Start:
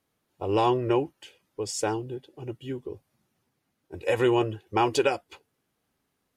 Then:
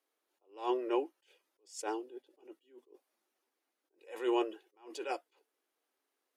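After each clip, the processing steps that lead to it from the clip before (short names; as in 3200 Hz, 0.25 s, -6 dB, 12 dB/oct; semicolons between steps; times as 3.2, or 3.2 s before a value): steep high-pass 310 Hz 36 dB/oct; attack slew limiter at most 170 dB/s; gain -6.5 dB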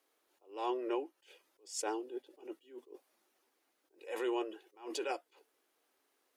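compressor 3:1, threshold -43 dBFS, peak gain reduction 12.5 dB; gain +7 dB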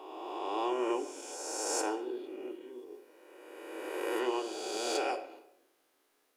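spectral swells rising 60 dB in 2.17 s; shoebox room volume 240 m³, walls mixed, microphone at 0.48 m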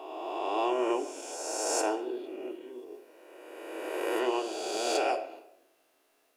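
small resonant body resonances 660/2700 Hz, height 13 dB, ringing for 70 ms; gain +2.5 dB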